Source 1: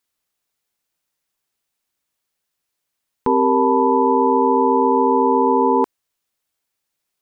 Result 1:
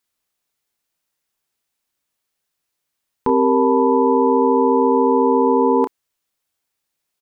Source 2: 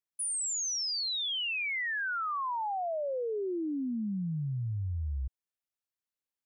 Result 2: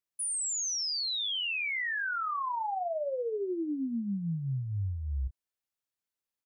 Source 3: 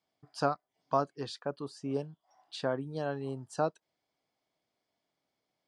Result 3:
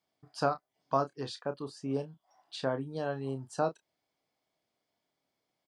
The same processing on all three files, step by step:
double-tracking delay 30 ms −10 dB

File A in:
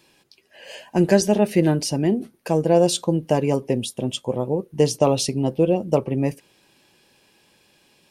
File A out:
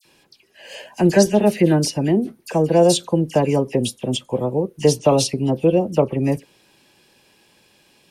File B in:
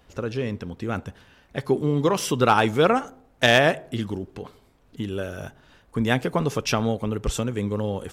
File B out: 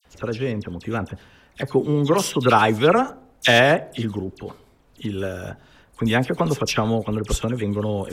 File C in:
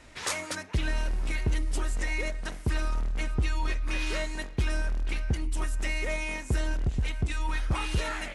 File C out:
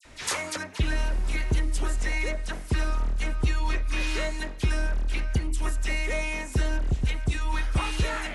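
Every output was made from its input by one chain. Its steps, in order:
all-pass dispersion lows, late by 52 ms, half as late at 2,300 Hz
level +2.5 dB

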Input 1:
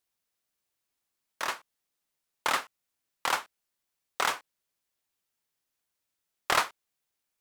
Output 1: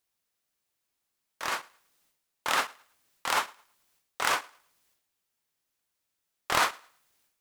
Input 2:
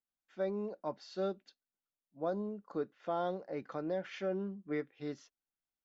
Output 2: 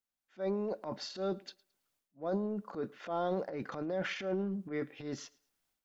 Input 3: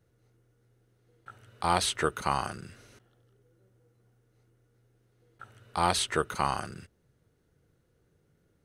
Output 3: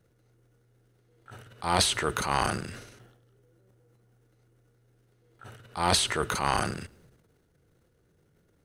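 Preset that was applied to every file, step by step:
transient designer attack −7 dB, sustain +11 dB
on a send: feedback echo with a high-pass in the loop 109 ms, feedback 27%, high-pass 230 Hz, level −23.5 dB
on the sum: level +1.5 dB

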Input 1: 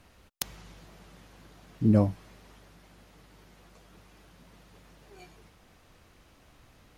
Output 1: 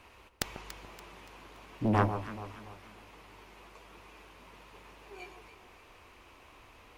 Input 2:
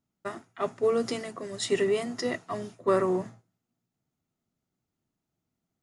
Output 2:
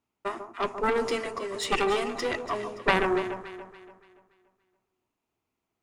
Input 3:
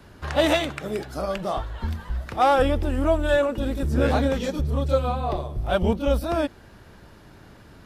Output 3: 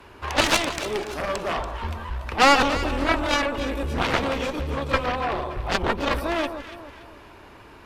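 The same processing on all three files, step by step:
graphic EQ with 15 bands 160 Hz −9 dB, 400 Hz +6 dB, 1,000 Hz +10 dB, 2,500 Hz +10 dB
harmonic generator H 3 −14 dB, 4 −17 dB, 7 −17 dB, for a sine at −1.5 dBFS
soft clipping −9 dBFS
on a send: delay that swaps between a low-pass and a high-pass 143 ms, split 1,200 Hz, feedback 62%, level −8 dB
on the sum: level +3 dB

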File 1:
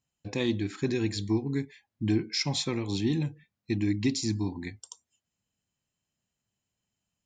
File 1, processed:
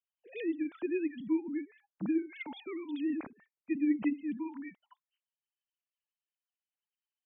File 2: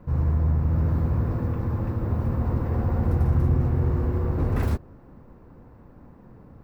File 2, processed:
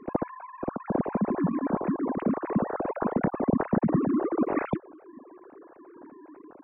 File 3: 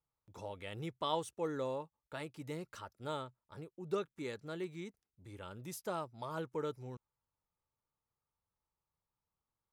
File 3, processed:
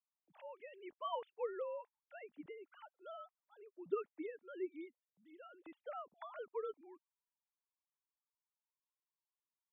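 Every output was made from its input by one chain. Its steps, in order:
three sine waves on the formant tracks
level −5 dB

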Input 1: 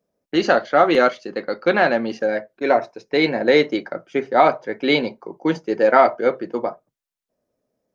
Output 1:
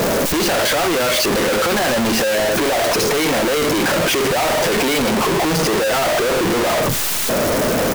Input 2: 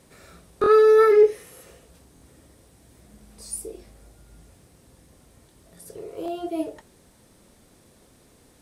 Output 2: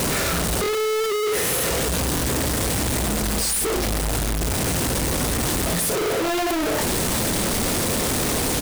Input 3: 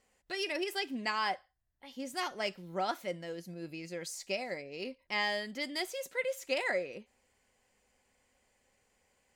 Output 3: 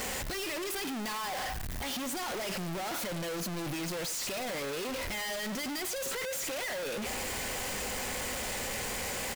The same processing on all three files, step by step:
sign of each sample alone
hum removal 45.77 Hz, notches 2
far-end echo of a speakerphone 90 ms, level −13 dB
level +3 dB

